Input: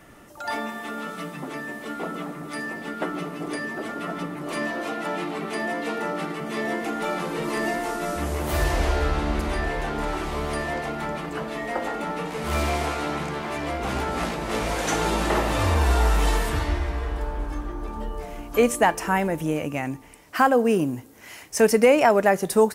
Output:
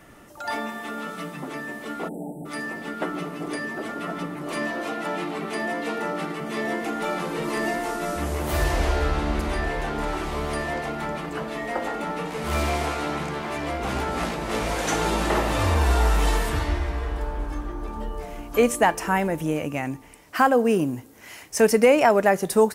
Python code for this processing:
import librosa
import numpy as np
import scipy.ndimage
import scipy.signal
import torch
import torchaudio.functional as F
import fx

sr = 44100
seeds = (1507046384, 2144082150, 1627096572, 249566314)

y = fx.spec_erase(x, sr, start_s=2.08, length_s=0.38, low_hz=910.0, high_hz=7500.0)